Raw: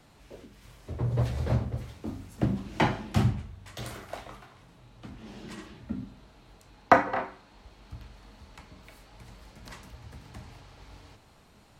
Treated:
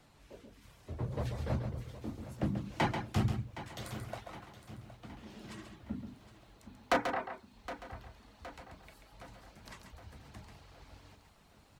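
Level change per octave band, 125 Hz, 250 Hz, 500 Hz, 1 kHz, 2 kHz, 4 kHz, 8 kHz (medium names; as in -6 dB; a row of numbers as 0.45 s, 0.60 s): -7.0 dB, -6.0 dB, -7.5 dB, -9.0 dB, -7.0 dB, -3.5 dB, -3.5 dB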